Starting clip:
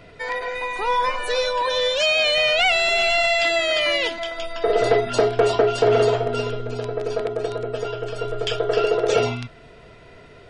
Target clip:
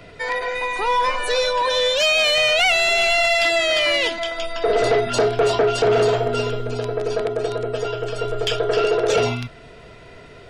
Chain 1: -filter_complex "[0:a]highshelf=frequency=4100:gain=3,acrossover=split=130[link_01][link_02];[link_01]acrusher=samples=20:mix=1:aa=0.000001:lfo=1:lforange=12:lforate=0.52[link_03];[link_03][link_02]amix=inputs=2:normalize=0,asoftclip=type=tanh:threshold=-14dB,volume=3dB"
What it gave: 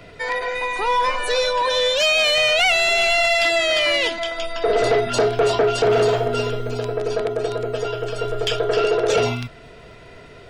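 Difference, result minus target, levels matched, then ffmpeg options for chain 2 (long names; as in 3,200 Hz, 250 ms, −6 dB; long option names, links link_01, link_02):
sample-and-hold swept by an LFO: distortion +13 dB
-filter_complex "[0:a]highshelf=frequency=4100:gain=3,acrossover=split=130[link_01][link_02];[link_01]acrusher=samples=5:mix=1:aa=0.000001:lfo=1:lforange=3:lforate=0.52[link_03];[link_03][link_02]amix=inputs=2:normalize=0,asoftclip=type=tanh:threshold=-14dB,volume=3dB"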